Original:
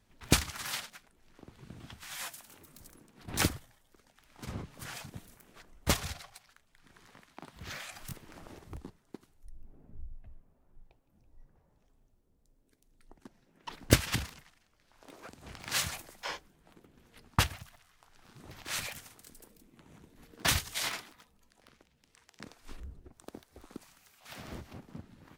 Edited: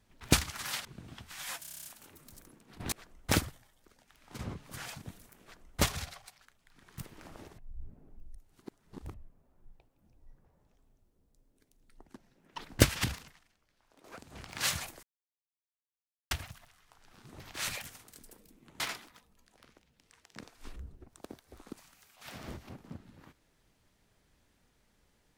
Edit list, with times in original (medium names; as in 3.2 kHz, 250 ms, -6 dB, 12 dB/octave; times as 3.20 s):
0.85–1.57 s: delete
2.33 s: stutter 0.03 s, 9 plays
5.50–5.90 s: copy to 3.40 s
7.06–8.09 s: delete
8.69–10.25 s: reverse
14.25–15.15 s: fade out, to -13 dB
16.14–17.42 s: mute
19.91–20.84 s: delete